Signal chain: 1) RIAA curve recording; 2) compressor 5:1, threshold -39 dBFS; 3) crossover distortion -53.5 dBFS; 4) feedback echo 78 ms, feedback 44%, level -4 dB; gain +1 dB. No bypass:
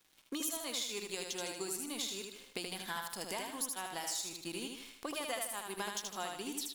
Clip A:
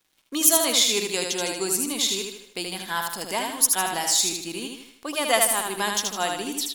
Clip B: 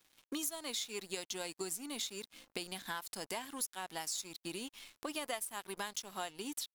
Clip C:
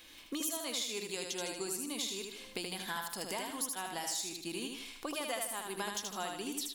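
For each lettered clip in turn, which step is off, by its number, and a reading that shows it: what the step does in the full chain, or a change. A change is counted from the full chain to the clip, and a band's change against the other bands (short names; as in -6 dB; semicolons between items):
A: 2, mean gain reduction 11.5 dB; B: 4, echo-to-direct -3.0 dB to none; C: 3, distortion -15 dB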